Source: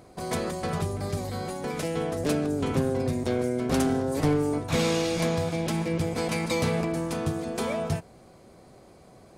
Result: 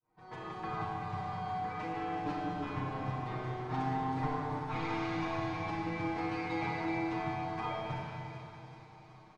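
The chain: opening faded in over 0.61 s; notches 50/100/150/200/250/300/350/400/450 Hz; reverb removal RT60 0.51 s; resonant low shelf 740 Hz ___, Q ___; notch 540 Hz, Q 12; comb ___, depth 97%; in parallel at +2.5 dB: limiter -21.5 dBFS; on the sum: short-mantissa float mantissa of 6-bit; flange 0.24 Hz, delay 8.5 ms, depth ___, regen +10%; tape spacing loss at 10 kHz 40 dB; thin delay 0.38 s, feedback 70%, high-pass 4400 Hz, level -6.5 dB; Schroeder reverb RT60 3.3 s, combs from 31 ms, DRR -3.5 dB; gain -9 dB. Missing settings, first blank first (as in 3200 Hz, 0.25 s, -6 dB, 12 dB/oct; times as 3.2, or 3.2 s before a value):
-6 dB, 3, 6.5 ms, 1.3 ms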